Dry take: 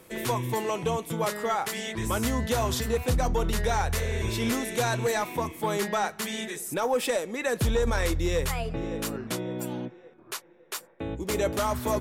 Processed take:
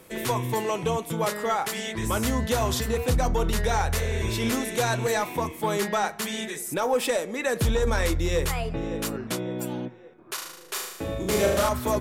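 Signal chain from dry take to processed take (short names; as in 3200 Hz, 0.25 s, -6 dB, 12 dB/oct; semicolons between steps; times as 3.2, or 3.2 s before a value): de-hum 116.9 Hz, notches 20; 10.34–11.69 flutter echo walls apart 6.5 m, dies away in 0.85 s; gain +2 dB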